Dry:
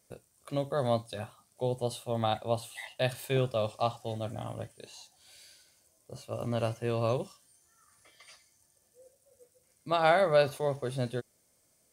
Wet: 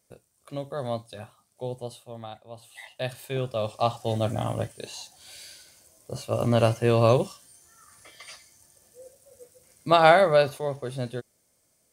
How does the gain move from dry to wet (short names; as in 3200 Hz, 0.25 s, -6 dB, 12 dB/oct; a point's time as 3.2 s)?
1.74 s -2 dB
2.5 s -14 dB
2.79 s -1.5 dB
3.35 s -1.5 dB
4.19 s +10 dB
9.92 s +10 dB
10.62 s +1 dB